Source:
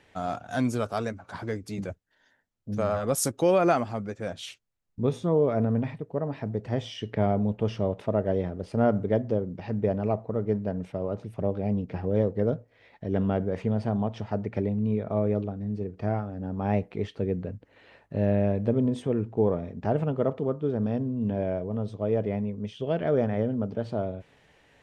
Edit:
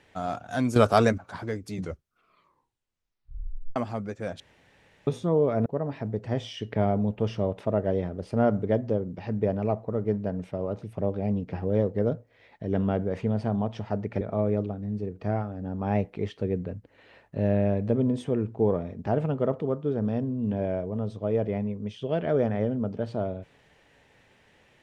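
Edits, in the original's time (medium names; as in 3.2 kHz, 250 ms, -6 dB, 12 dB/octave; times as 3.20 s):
0.76–1.18 s: gain +10 dB
1.69 s: tape stop 2.07 s
4.40–5.07 s: room tone
5.66–6.07 s: delete
14.62–14.99 s: delete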